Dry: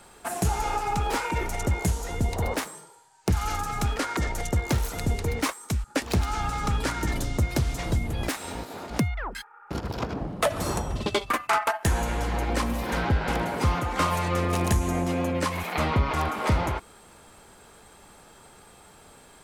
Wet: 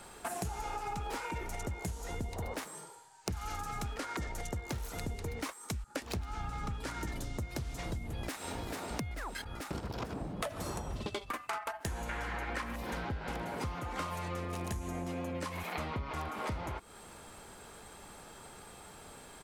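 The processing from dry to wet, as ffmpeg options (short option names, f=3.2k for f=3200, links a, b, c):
-filter_complex "[0:a]asettb=1/sr,asplit=3[a][b][c];[a]atrim=end=6.164[d];[b]atrim=start=6.16:end=6.74,asetpts=PTS-STARTPTS,afade=t=in:d=0.004:c=qsin,afade=t=out:st=0.576:d=0.004:c=qsin,bass=f=250:g=4,treble=f=4k:g=-4[e];[c]atrim=start=6.736[f];[d][e]acrossfade=d=0.004:c1=hsin:c2=qsin[g];[g][f]acrossfade=d=0.004:c1=qsin:c2=hsin,asplit=2[h][i];[i]afade=t=in:st=8.13:d=0.01,afade=t=out:st=8.56:d=0.01,aecho=0:1:440|880|1320|1760|2200|2640|3080|3520|3960|4400|4840:0.421697|0.295188|0.206631|0.144642|0.101249|0.0708745|0.0496122|0.0347285|0.02431|0.017017|0.0119119[j];[h][j]amix=inputs=2:normalize=0,asettb=1/sr,asplit=3[k][l][m];[k]atrim=end=12.094[n];[l]atrim=start=12.09:end=12.76,asetpts=PTS-STARTPTS,afade=t=in:d=0.004:c=qsin,afade=t=out:st=0.666:d=0.004:c=qsin,equalizer=f=1.7k:t=o:w=1.6:g=12.5[o];[m]atrim=start=12.756[p];[n][o]acrossfade=d=0.004:c1=hsin:c2=qsin[q];[q][p]acrossfade=d=0.004:c1=qsin:c2=hsin,acompressor=threshold=-36dB:ratio=6"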